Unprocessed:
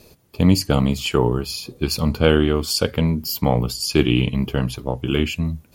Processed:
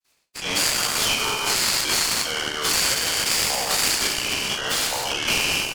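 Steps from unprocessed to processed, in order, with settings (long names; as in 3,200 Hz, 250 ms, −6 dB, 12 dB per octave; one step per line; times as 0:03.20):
peak hold with a decay on every bin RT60 1.50 s
meter weighting curve ITU-R 468
noise gate with hold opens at −32 dBFS
low-shelf EQ 410 Hz −10.5 dB
brickwall limiter −14.5 dBFS, peak gain reduction 19.5 dB
all-pass dispersion lows, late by 44 ms, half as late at 2,300 Hz
flanger 1.2 Hz, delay 0.4 ms, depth 5.3 ms, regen +56%
double-tracking delay 40 ms −12 dB
noise reduction from a noise print of the clip's start 26 dB
short delay modulated by noise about 2,300 Hz, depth 0.036 ms
level +6.5 dB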